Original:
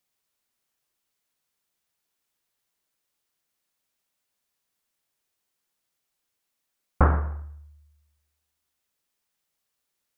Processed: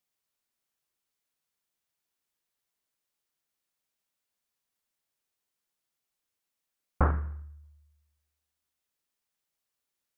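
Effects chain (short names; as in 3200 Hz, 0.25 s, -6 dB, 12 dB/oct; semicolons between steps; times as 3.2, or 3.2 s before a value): 7.11–7.64 bell 700 Hz -11 dB 1.5 oct; gain -5.5 dB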